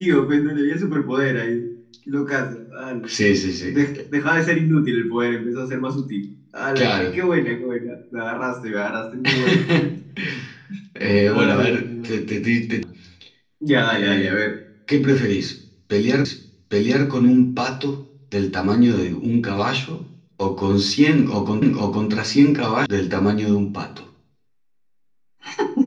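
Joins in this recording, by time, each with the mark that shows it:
12.83 s: sound stops dead
16.25 s: repeat of the last 0.81 s
21.62 s: repeat of the last 0.47 s
22.86 s: sound stops dead

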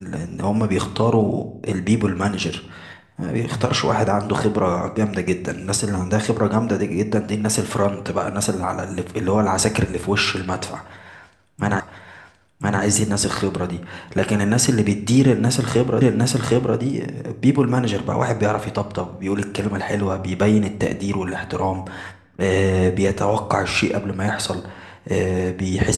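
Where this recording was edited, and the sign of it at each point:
11.80 s: repeat of the last 1.02 s
16.01 s: repeat of the last 0.76 s

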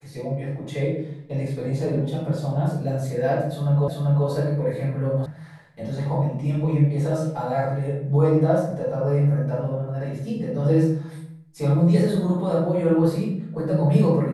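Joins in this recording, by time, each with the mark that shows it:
3.88 s: repeat of the last 0.39 s
5.26 s: sound stops dead

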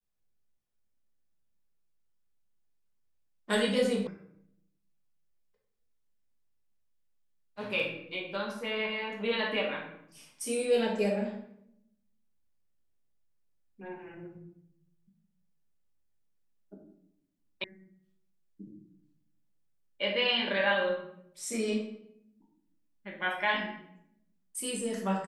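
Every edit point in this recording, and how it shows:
4.07 s: sound stops dead
17.64 s: sound stops dead

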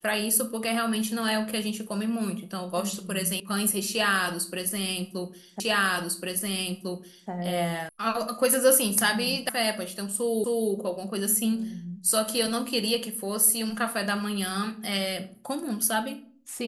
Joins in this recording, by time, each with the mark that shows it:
3.40 s: sound stops dead
5.60 s: repeat of the last 1.7 s
7.89 s: sound stops dead
9.49 s: sound stops dead
10.44 s: repeat of the last 0.26 s

